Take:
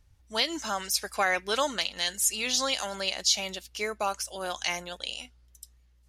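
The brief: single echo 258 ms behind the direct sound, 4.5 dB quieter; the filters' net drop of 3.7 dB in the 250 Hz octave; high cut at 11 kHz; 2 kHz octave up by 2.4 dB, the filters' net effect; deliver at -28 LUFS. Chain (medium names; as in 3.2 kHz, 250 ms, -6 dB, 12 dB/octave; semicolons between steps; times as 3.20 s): low-pass 11 kHz; peaking EQ 250 Hz -5 dB; peaking EQ 2 kHz +3 dB; delay 258 ms -4.5 dB; trim -1.5 dB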